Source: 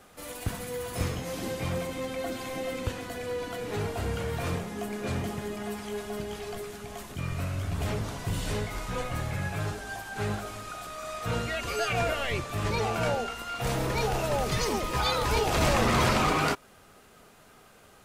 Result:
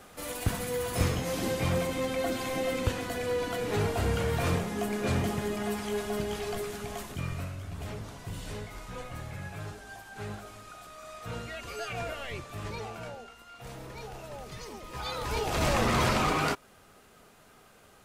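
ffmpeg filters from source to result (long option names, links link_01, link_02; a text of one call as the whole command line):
ffmpeg -i in.wav -af "volume=15.5dB,afade=type=out:start_time=6.88:duration=0.69:silence=0.281838,afade=type=out:start_time=12.6:duration=0.52:silence=0.473151,afade=type=in:start_time=14.8:duration=0.97:silence=0.237137" out.wav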